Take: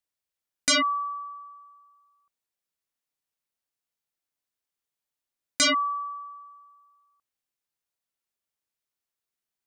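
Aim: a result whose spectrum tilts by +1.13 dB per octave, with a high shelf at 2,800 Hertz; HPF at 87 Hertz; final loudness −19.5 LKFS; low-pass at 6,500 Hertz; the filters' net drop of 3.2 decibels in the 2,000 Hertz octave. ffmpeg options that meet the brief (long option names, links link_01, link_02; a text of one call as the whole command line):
ffmpeg -i in.wav -af "highpass=87,lowpass=6500,equalizer=frequency=2000:width_type=o:gain=-6.5,highshelf=frequency=2800:gain=6,volume=5dB" out.wav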